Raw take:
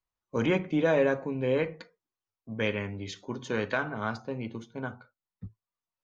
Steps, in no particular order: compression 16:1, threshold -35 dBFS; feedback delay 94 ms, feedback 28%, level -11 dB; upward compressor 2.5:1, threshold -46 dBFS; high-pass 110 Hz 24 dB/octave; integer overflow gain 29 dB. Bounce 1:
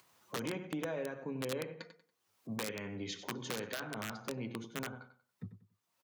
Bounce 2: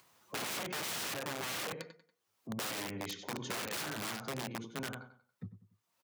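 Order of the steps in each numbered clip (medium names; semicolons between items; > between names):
compression > upward compressor > feedback delay > integer overflow > high-pass; feedback delay > integer overflow > high-pass > upward compressor > compression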